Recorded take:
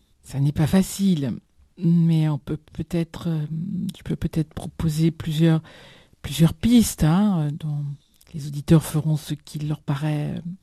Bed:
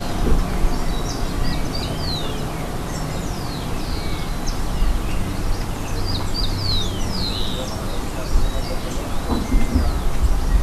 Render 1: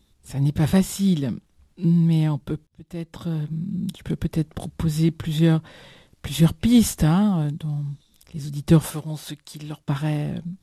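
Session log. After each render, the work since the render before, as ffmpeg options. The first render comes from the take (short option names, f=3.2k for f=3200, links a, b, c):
-filter_complex "[0:a]asettb=1/sr,asplit=3[a][b][c];[a]atrim=end=8.864[d];[b]atrim=start=8.86:end=9.89,asetpts=PTS-STARTPTS,afade=t=in:d=0.004:c=qsin,afade=t=out:st=1.026:d=0.004:c=qsin,lowshelf=f=290:g=-11.5[e];[c]atrim=start=9.886[f];[d][e]acrossfade=d=0.004:c1=hsin:c2=qsin[g];[g][f]acrossfade=d=0.004:c1=qsin:c2=hsin,asplit=2[h][i];[h]atrim=end=2.67,asetpts=PTS-STARTPTS,afade=t=out:st=2.666:d=0.004:c=hsin[j];[i]atrim=start=2.67,asetpts=PTS-STARTPTS,afade=t=in:d=0.79[k];[j][k]concat=n=2:v=0:a=1"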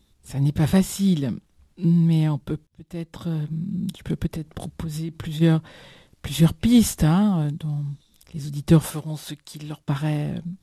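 -filter_complex "[0:a]asplit=3[a][b][c];[a]afade=t=out:st=4.26:d=0.02[d];[b]acompressor=threshold=-26dB:ratio=6:attack=3.2:release=140:knee=1:detection=peak,afade=t=in:st=4.26:d=0.02,afade=t=out:st=5.4:d=0.02[e];[c]afade=t=in:st=5.4:d=0.02[f];[d][e][f]amix=inputs=3:normalize=0"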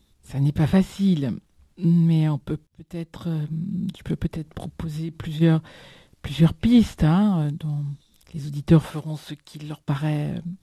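-filter_complex "[0:a]acrossover=split=4000[a][b];[b]acompressor=threshold=-48dB:ratio=4:attack=1:release=60[c];[a][c]amix=inputs=2:normalize=0"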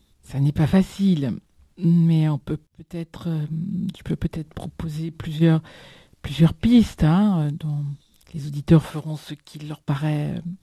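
-af "volume=1dB"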